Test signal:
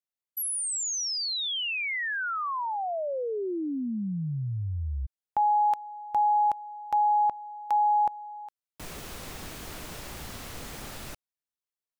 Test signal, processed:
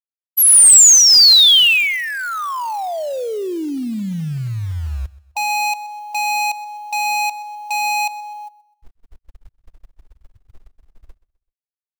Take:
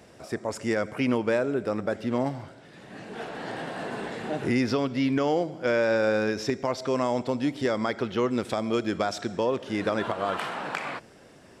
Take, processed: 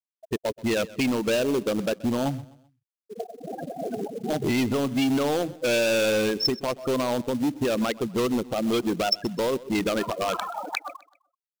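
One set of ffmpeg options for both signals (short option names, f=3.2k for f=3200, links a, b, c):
-filter_complex "[0:a]lowpass=9.5k,afftfilt=real='re*gte(hypot(re,im),0.0891)':imag='im*gte(hypot(re,im),0.0891)':win_size=1024:overlap=0.75,equalizer=f=5.7k:w=3.7:g=-3.5,alimiter=limit=-22dB:level=0:latency=1:release=179,volume=28dB,asoftclip=hard,volume=-28dB,aexciter=amount=6.3:drive=4.7:freq=2.6k,acrusher=bits=5:mode=log:mix=0:aa=0.000001,asplit=2[a][b];[b]aecho=0:1:128|256|384:0.1|0.038|0.0144[c];[a][c]amix=inputs=2:normalize=0,volume=7.5dB"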